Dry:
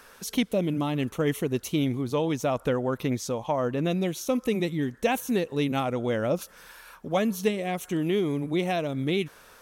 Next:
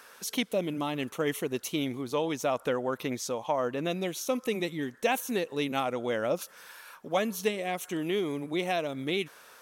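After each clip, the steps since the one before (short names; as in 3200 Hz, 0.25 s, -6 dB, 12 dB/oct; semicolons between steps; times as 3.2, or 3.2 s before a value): HPF 450 Hz 6 dB/oct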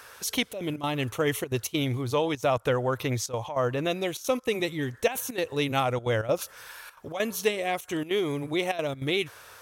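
resonant low shelf 140 Hz +9.5 dB, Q 3; step gate "xxxxxxx.xx.x" 198 bpm -12 dB; gain +4.5 dB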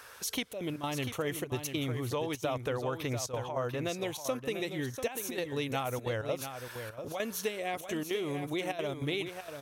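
compressor 2.5:1, threshold -29 dBFS, peak gain reduction 8 dB; echo 0.692 s -8.5 dB; gain -3 dB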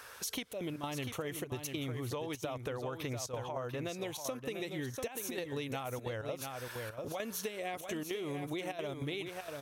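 compressor, threshold -35 dBFS, peak gain reduction 8 dB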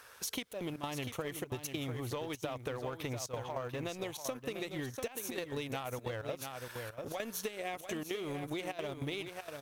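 G.711 law mismatch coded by A; gain +2.5 dB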